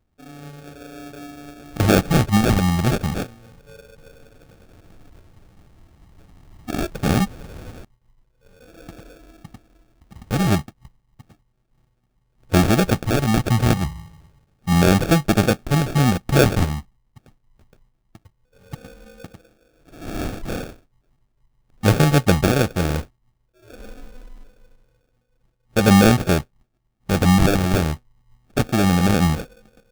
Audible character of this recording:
phaser sweep stages 4, 0.28 Hz, lowest notch 500–1,400 Hz
aliases and images of a low sample rate 1,000 Hz, jitter 0%

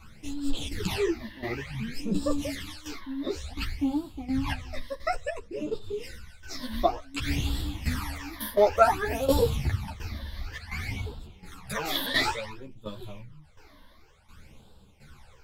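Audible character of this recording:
phaser sweep stages 12, 0.56 Hz, lowest notch 130–2,100 Hz
tremolo saw down 1.4 Hz, depth 75%
a shimmering, thickened sound

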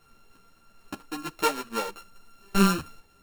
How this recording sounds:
a buzz of ramps at a fixed pitch in blocks of 32 samples
a shimmering, thickened sound

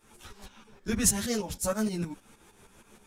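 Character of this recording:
tremolo saw up 6.4 Hz, depth 75%
a shimmering, thickened sound

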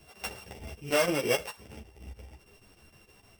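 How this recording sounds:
a buzz of ramps at a fixed pitch in blocks of 16 samples
chopped level 6.5 Hz, depth 60%, duty 80%
a shimmering, thickened sound

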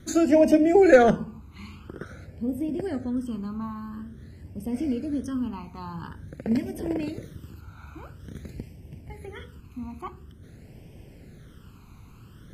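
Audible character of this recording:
phaser sweep stages 12, 0.48 Hz, lowest notch 560–1,300 Hz
MP3

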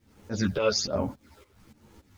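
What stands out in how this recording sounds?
phaser sweep stages 8, 1.2 Hz, lowest notch 210–4,300 Hz
a quantiser's noise floor 12 bits, dither none
tremolo saw up 3.5 Hz, depth 85%
a shimmering, thickened sound

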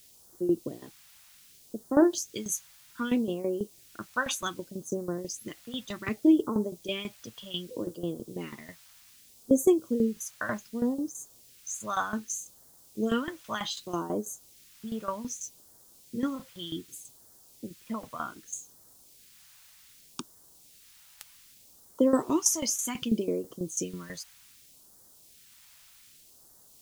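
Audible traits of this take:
tremolo saw down 6.1 Hz, depth 80%
a quantiser's noise floor 10 bits, dither triangular
phaser sweep stages 2, 0.65 Hz, lowest notch 340–2,400 Hz

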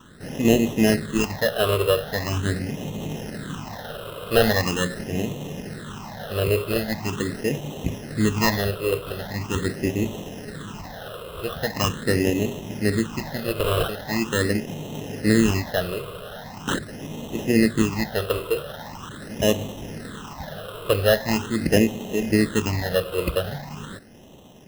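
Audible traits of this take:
aliases and images of a low sample rate 2,300 Hz, jitter 0%
phaser sweep stages 8, 0.42 Hz, lowest notch 240–1,500 Hz

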